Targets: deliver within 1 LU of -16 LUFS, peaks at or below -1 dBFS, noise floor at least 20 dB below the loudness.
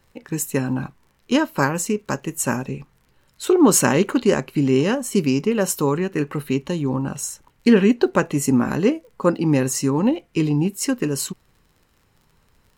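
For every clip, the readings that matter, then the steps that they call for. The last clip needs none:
ticks 36/s; loudness -20.5 LUFS; peak -2.0 dBFS; loudness target -16.0 LUFS
-> de-click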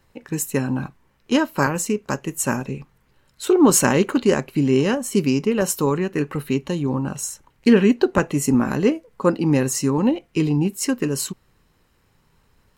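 ticks 0.63/s; loudness -20.5 LUFS; peak -2.0 dBFS; loudness target -16.0 LUFS
-> gain +4.5 dB; limiter -1 dBFS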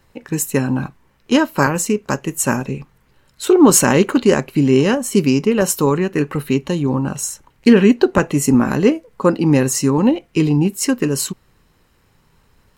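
loudness -16.5 LUFS; peak -1.0 dBFS; noise floor -58 dBFS

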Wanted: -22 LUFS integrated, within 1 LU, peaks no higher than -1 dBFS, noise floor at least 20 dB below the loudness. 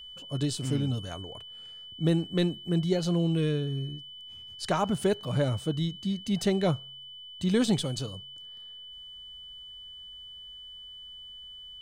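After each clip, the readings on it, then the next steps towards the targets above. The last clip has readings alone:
steady tone 3000 Hz; tone level -43 dBFS; loudness -29.0 LUFS; peak -14.0 dBFS; loudness target -22.0 LUFS
-> notch 3000 Hz, Q 30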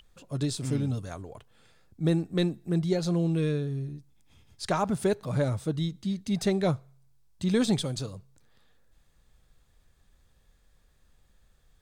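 steady tone none; loudness -29.0 LUFS; peak -14.0 dBFS; loudness target -22.0 LUFS
-> gain +7 dB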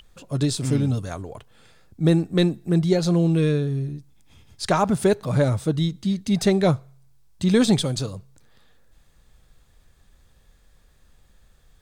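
loudness -22.0 LUFS; peak -7.0 dBFS; noise floor -58 dBFS

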